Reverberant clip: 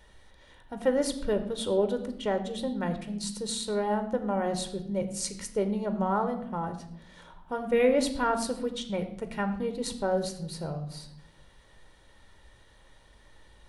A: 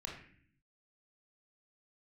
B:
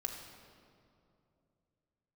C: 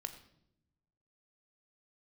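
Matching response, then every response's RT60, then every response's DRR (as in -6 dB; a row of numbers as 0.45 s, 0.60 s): C; 0.55 s, 2.7 s, no single decay rate; -1.5 dB, 3.0 dB, 7.5 dB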